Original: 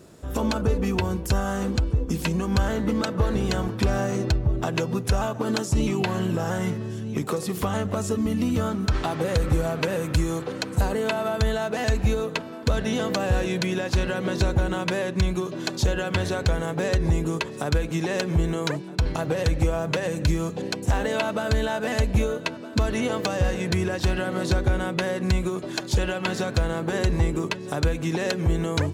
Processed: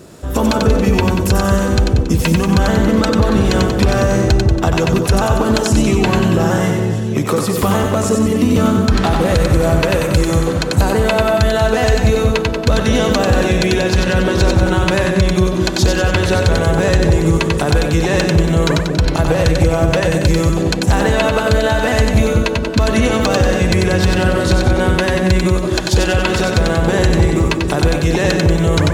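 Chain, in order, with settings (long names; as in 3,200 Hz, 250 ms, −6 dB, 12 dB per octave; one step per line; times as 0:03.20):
on a send: echo with a time of its own for lows and highs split 640 Hz, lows 207 ms, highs 93 ms, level −4 dB
on the sum: boost into a limiter +12.5 dB
level −2.5 dB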